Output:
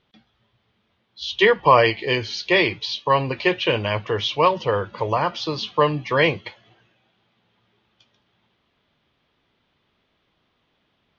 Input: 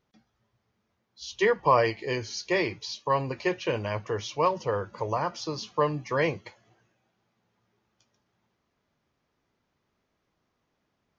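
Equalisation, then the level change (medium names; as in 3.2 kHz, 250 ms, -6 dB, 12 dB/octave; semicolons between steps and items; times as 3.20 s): resonant low-pass 3.4 kHz, resonance Q 3.2; +6.5 dB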